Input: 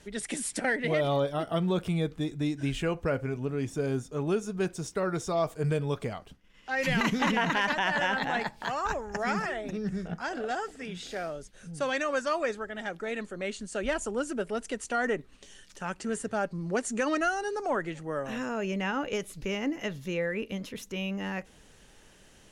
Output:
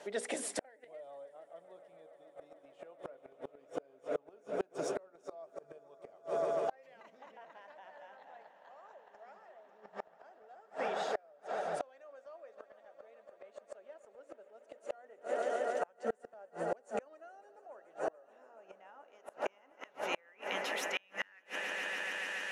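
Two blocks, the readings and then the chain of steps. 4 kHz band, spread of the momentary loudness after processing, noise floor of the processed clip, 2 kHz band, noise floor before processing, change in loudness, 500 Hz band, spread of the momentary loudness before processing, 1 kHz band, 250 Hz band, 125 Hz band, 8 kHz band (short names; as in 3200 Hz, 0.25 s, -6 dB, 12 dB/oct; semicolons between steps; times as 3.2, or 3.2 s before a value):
-9.5 dB, 21 LU, -66 dBFS, -11.0 dB, -57 dBFS, -8.5 dB, -8.5 dB, 9 LU, -10.0 dB, -19.5 dB, -28.0 dB, -9.5 dB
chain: RIAA curve recording; notches 60/120/180/240/300/360/420/480/540 Hz; modulation noise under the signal 32 dB; band-pass sweep 610 Hz -> 2100 Hz, 18.24–22.01; on a send: swelling echo 0.143 s, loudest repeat 5, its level -16 dB; on the sum: flipped gate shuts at -34 dBFS, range -35 dB; in parallel at +2 dB: compressor, threshold -58 dBFS, peak gain reduction 16.5 dB; on the sum: gain +9.5 dB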